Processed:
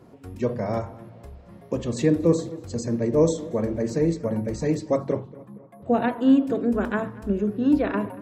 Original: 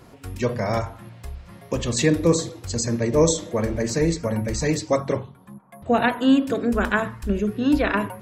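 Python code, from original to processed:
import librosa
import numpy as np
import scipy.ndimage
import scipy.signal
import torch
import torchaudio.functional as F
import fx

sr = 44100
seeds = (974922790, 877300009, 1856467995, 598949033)

p1 = fx.highpass(x, sr, hz=300.0, slope=6)
p2 = fx.tilt_shelf(p1, sr, db=9.0, hz=780.0)
p3 = p2 + fx.echo_filtered(p2, sr, ms=234, feedback_pct=55, hz=3000.0, wet_db=-20, dry=0)
y = p3 * librosa.db_to_amplitude(-3.5)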